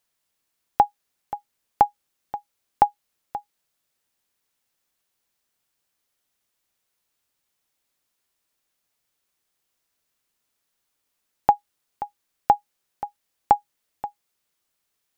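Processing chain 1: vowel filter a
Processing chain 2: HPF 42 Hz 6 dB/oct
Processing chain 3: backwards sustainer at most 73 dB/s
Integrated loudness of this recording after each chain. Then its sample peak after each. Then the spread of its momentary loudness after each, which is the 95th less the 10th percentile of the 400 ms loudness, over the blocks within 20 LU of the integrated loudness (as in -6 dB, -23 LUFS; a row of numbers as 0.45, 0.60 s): -32.0, -24.5, -27.0 LUFS; -10.5, -3.5, -3.5 dBFS; 15, 14, 15 LU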